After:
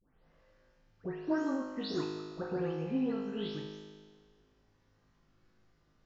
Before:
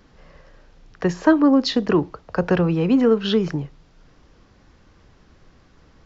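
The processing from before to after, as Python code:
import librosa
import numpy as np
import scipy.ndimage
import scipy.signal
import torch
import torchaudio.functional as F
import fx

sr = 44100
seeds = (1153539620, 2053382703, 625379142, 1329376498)

y = fx.spec_delay(x, sr, highs='late', ms=354)
y = fx.comb_fb(y, sr, f0_hz=52.0, decay_s=1.6, harmonics='all', damping=0.0, mix_pct=90)
y = y * 10.0 ** (-3.5 / 20.0)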